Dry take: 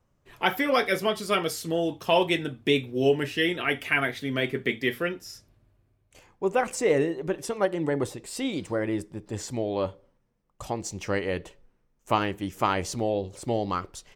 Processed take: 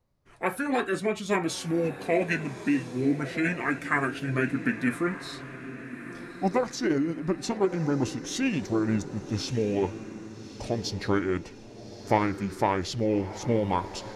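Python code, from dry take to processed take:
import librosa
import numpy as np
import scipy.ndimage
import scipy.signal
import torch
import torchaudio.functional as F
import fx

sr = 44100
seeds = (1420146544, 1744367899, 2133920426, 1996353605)

y = fx.formant_shift(x, sr, semitones=-5)
y = fx.rider(y, sr, range_db=4, speed_s=0.5)
y = fx.echo_diffused(y, sr, ms=1245, feedback_pct=45, wet_db=-13)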